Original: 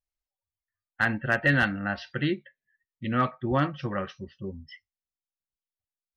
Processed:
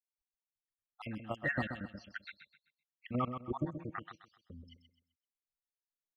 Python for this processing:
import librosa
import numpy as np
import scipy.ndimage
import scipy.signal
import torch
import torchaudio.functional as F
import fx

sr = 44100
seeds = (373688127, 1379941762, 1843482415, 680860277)

y = fx.spec_dropout(x, sr, seeds[0], share_pct=75)
y = fx.level_steps(y, sr, step_db=9)
y = fx.echo_feedback(y, sr, ms=129, feedback_pct=32, wet_db=-8.5)
y = y * librosa.db_to_amplitude(-4.5)